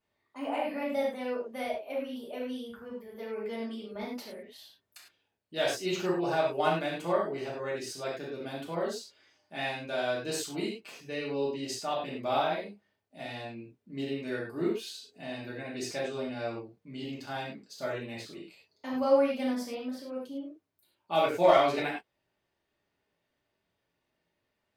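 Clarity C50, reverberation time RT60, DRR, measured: 2.5 dB, not exponential, -7.0 dB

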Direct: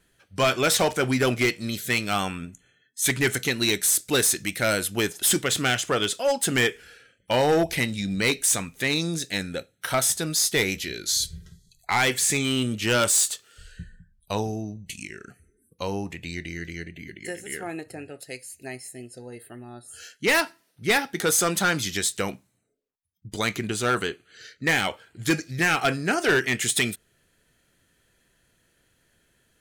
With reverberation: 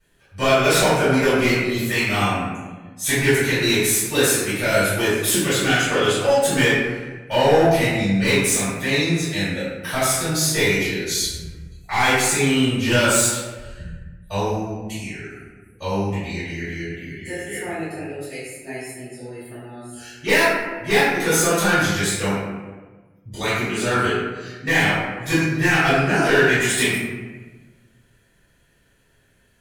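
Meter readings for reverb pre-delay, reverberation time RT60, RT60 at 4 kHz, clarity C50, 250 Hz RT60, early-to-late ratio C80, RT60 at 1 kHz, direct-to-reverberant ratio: 3 ms, 1.3 s, 0.75 s, -2.0 dB, 1.6 s, 1.0 dB, 1.2 s, -14.5 dB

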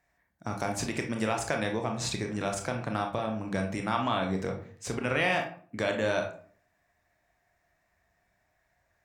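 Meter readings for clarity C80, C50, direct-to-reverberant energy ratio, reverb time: 12.5 dB, 8.0 dB, 2.5 dB, 0.50 s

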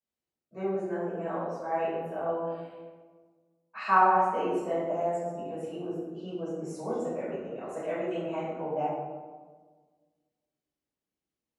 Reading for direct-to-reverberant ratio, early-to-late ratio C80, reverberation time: -12.5 dB, 2.0 dB, 1.5 s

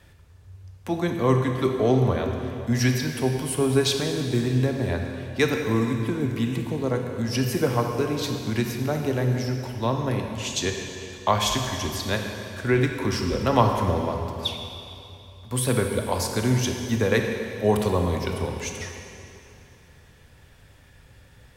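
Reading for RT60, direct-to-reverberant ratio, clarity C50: 2.9 s, 3.0 dB, 4.0 dB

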